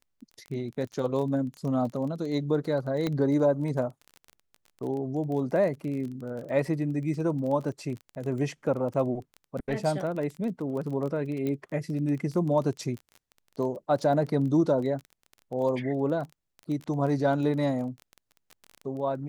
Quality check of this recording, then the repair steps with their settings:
surface crackle 20 per second −34 dBFS
0:03.07: click −16 dBFS
0:11.47: click −20 dBFS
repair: click removal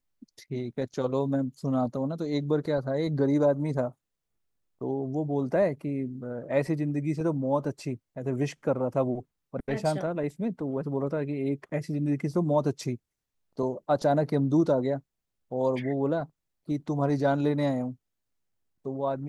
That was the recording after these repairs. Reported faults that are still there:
none of them is left

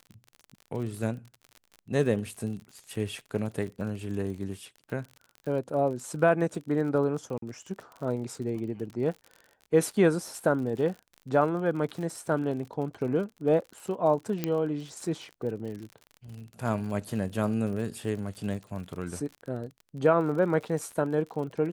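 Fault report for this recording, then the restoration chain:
surface crackle 49 per second −37 dBFS
0:07.38–0:07.42: drop-out 43 ms
0:14.44: click −14 dBFS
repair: click removal
repair the gap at 0:07.38, 43 ms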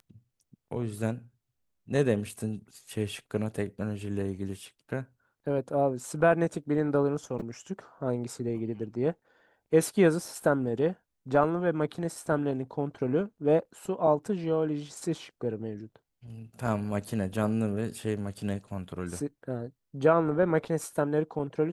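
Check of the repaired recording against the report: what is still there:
none of them is left

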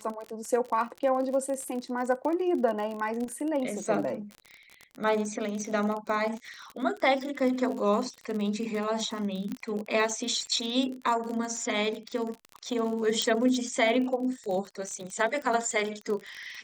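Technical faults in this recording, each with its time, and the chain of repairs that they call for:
surface crackle 43 per second −33 dBFS
0:09.52: click −22 dBFS
0:13.22: click −13 dBFS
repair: click removal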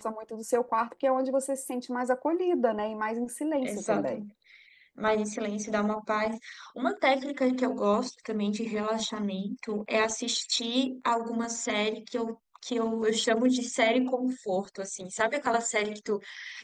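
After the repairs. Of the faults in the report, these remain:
0:13.22: click

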